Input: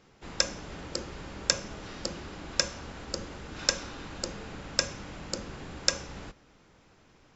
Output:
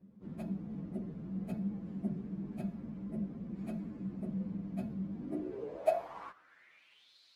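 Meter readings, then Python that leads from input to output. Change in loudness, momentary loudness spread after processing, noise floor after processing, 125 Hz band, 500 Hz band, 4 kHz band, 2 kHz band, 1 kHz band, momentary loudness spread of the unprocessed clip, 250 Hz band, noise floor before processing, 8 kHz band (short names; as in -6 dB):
-7.0 dB, 8 LU, -65 dBFS, +1.5 dB, -0.5 dB, under -30 dB, -21.0 dB, -3.0 dB, 13 LU, +6.0 dB, -61 dBFS, n/a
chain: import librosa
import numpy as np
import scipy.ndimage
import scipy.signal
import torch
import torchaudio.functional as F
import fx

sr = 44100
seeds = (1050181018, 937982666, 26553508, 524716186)

y = fx.partial_stretch(x, sr, pct=124)
y = fx.filter_sweep_bandpass(y, sr, from_hz=200.0, to_hz=4100.0, start_s=5.1, end_s=7.17, q=5.7)
y = y * 10.0 ** (16.0 / 20.0)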